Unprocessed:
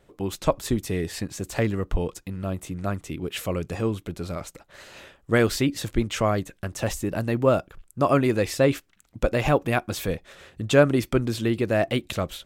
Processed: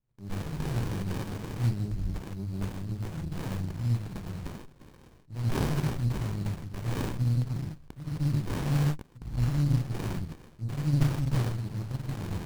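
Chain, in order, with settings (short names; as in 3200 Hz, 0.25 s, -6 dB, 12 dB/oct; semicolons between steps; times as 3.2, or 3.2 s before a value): repeated pitch sweeps +1.5 st, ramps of 1.037 s; low shelf 170 Hz -9 dB; notches 50/100/150 Hz; sample leveller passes 3; transient shaper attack -8 dB, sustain +5 dB; brick-wall FIR band-stop 200–4000 Hz; non-linear reverb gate 0.17 s flat, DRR -4.5 dB; running maximum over 65 samples; gain -6.5 dB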